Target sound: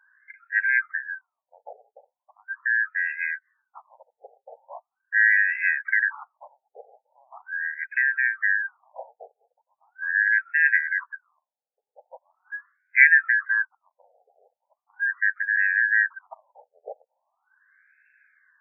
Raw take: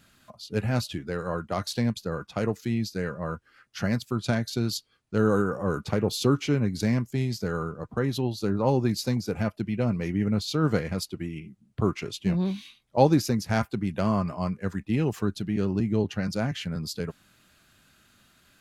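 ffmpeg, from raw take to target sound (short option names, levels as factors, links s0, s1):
-af "afftfilt=real='real(if(lt(b,272),68*(eq(floor(b/68),0)*3+eq(floor(b/68),1)*0+eq(floor(b/68),2)*1+eq(floor(b/68),3)*2)+mod(b,68),b),0)':imag='imag(if(lt(b,272),68*(eq(floor(b/68),0)*3+eq(floor(b/68),1)*0+eq(floor(b/68),2)*1+eq(floor(b/68),3)*2)+mod(b,68),b),0)':win_size=2048:overlap=0.75,highpass=f=51:p=1,afftfilt=real='re*between(b*sr/1024,590*pow(1900/590,0.5+0.5*sin(2*PI*0.4*pts/sr))/1.41,590*pow(1900/590,0.5+0.5*sin(2*PI*0.4*pts/sr))*1.41)':imag='im*between(b*sr/1024,590*pow(1900/590,0.5+0.5*sin(2*PI*0.4*pts/sr))/1.41,590*pow(1900/590,0.5+0.5*sin(2*PI*0.4*pts/sr))*1.41)':win_size=1024:overlap=0.75,volume=1.58"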